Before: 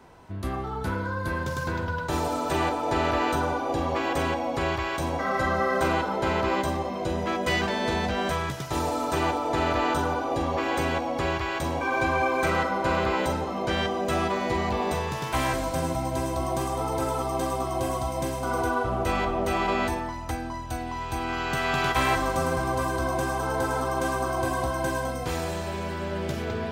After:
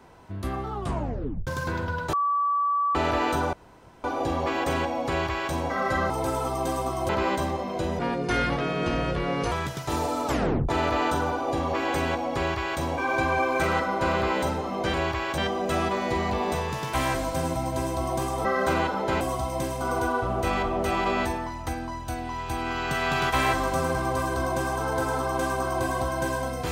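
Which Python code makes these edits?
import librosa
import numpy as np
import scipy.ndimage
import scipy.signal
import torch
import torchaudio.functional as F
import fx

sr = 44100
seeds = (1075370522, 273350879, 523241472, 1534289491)

y = fx.edit(x, sr, fx.tape_stop(start_s=0.72, length_s=0.75),
    fx.bleep(start_s=2.13, length_s=0.82, hz=1150.0, db=-21.0),
    fx.insert_room_tone(at_s=3.53, length_s=0.51),
    fx.duplicate(start_s=4.58, length_s=0.44, to_s=13.77),
    fx.swap(start_s=5.59, length_s=0.76, other_s=16.84, other_length_s=0.99),
    fx.speed_span(start_s=7.25, length_s=1.1, speed=0.72),
    fx.tape_stop(start_s=9.09, length_s=0.43), tone=tone)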